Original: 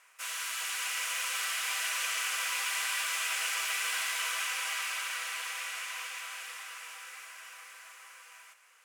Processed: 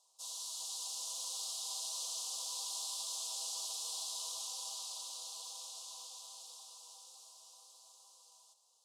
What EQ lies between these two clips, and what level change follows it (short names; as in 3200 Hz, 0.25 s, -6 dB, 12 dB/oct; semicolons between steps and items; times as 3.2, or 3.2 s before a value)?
elliptic band-stop 890–3900 Hz, stop band 70 dB; air absorption 76 m; tilt +3 dB/oct; -4.5 dB